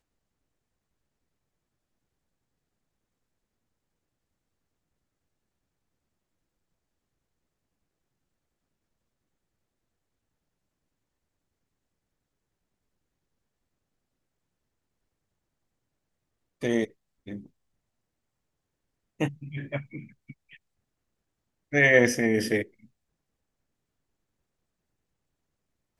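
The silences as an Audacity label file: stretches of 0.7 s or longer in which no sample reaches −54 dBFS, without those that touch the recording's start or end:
17.470000	19.190000	silence
20.570000	21.720000	silence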